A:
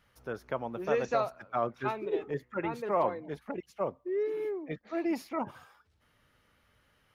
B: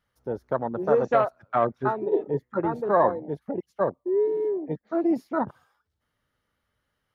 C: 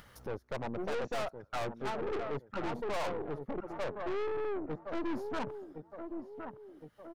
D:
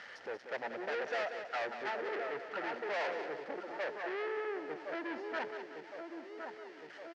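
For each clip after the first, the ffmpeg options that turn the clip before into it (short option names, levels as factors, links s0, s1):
-af "equalizer=f=2500:w=4.1:g=-6,afwtdn=0.0158,volume=2.51"
-filter_complex "[0:a]asplit=2[s0][s1];[s1]adelay=1064,lowpass=f=3300:p=1,volume=0.224,asplit=2[s2][s3];[s3]adelay=1064,lowpass=f=3300:p=1,volume=0.26,asplit=2[s4][s5];[s5]adelay=1064,lowpass=f=3300:p=1,volume=0.26[s6];[s0][s2][s4][s6]amix=inputs=4:normalize=0,acompressor=mode=upward:threshold=0.0224:ratio=2.5,aeval=exprs='(tanh(39.8*val(0)+0.7)-tanh(0.7))/39.8':c=same,volume=0.841"
-af "aeval=exprs='val(0)+0.5*0.00501*sgn(val(0))':c=same,highpass=500,equalizer=f=1100:t=q:w=4:g=-8,equalizer=f=1800:t=q:w=4:g=8,equalizer=f=3700:t=q:w=4:g=-5,lowpass=f=5000:w=0.5412,lowpass=f=5000:w=1.3066,aecho=1:1:186|372|558|744|930:0.355|0.153|0.0656|0.0282|0.0121"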